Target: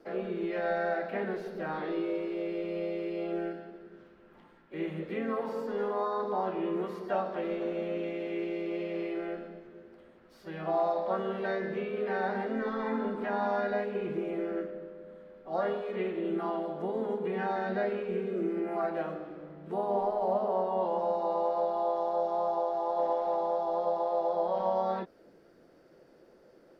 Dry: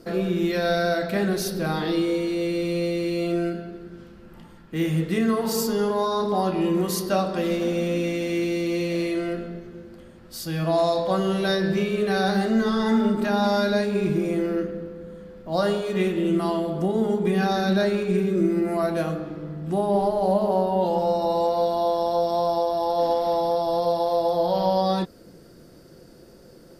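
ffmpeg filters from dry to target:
-filter_complex "[0:a]acrossover=split=280 3100:gain=0.224 1 0.178[a][b][c];[a][b][c]amix=inputs=3:normalize=0,acrossover=split=2800[d][e];[e]acompressor=threshold=-58dB:ratio=4:attack=1:release=60[f];[d][f]amix=inputs=2:normalize=0,asplit=2[g][h];[h]asetrate=52444,aresample=44100,atempo=0.840896,volume=-7dB[i];[g][i]amix=inputs=2:normalize=0,volume=-7.5dB"

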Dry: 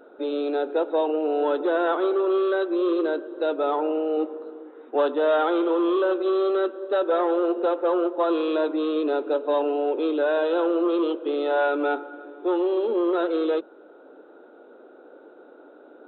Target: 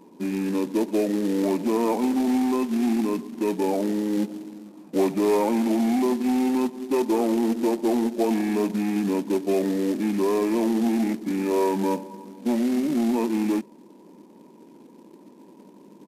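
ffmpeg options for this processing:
-af "acrusher=bits=4:mode=log:mix=0:aa=0.000001,asetrate=29433,aresample=44100,atempo=1.49831"

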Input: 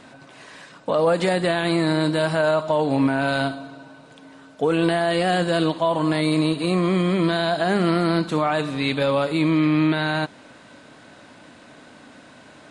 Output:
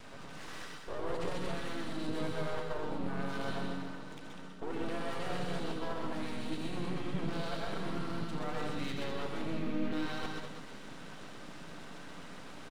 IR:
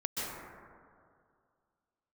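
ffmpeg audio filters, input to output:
-filter_complex "[0:a]areverse,acompressor=threshold=-31dB:ratio=10,areverse,aecho=1:1:87.46|198.3:0.316|0.398,aeval=exprs='max(val(0),0)':c=same,asplit=3[a][b][c];[b]asetrate=29433,aresample=44100,atempo=1.49831,volume=-7dB[d];[c]asetrate=35002,aresample=44100,atempo=1.25992,volume=-5dB[e];[a][d][e]amix=inputs=3:normalize=0[f];[1:a]atrim=start_sample=2205,atrim=end_sample=6174[g];[f][g]afir=irnorm=-1:irlink=0,volume=-1dB"

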